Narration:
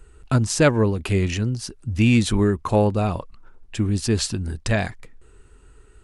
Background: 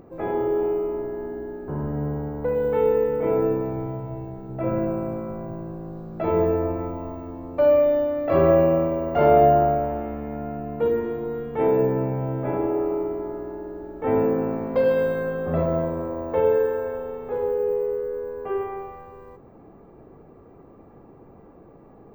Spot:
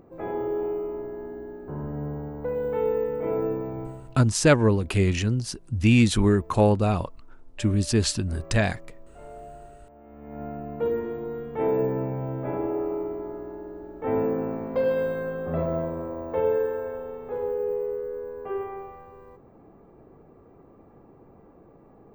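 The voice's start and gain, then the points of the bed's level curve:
3.85 s, −1.0 dB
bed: 0:03.84 −5 dB
0:04.43 −28 dB
0:09.84 −28 dB
0:10.42 −4 dB

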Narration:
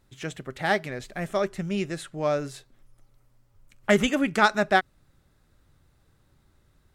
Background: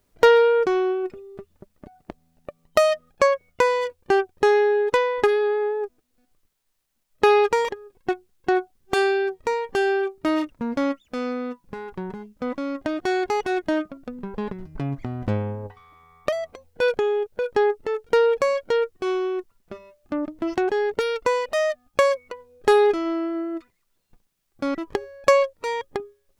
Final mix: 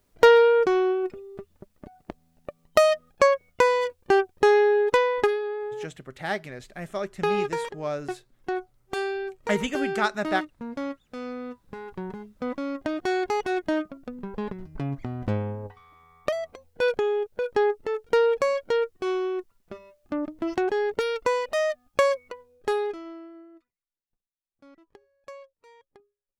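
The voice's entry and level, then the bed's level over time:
5.60 s, −5.0 dB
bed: 0:05.18 −0.5 dB
0:05.42 −8.5 dB
0:11.11 −8.5 dB
0:12.06 −2.5 dB
0:22.27 −2.5 dB
0:23.90 −27 dB

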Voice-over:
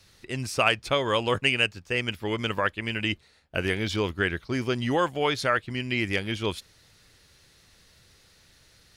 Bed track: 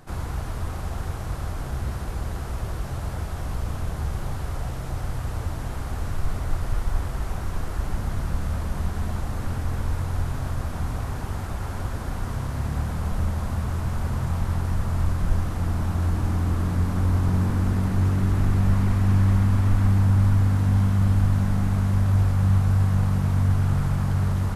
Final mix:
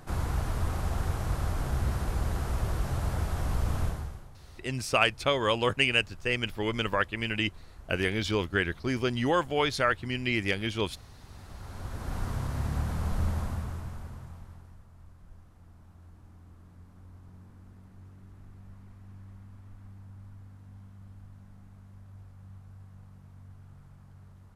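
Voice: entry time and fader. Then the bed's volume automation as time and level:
4.35 s, −1.5 dB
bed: 0:03.85 −0.5 dB
0:04.31 −22 dB
0:11.15 −22 dB
0:12.17 −4 dB
0:13.38 −4 dB
0:14.88 −29.5 dB

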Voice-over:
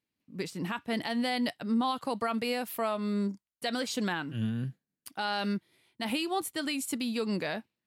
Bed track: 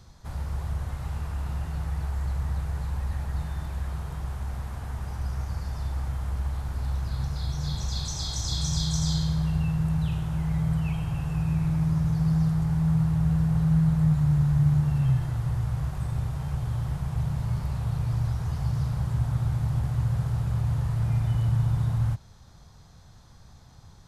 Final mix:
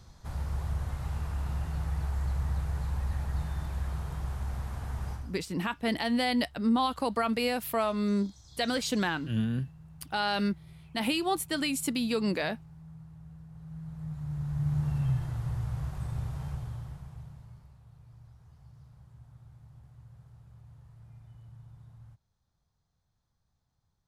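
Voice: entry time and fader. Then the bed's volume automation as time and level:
4.95 s, +2.5 dB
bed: 0:05.12 −2 dB
0:05.45 −25.5 dB
0:13.49 −25.5 dB
0:14.86 −5.5 dB
0:16.46 −5.5 dB
0:17.79 −27 dB

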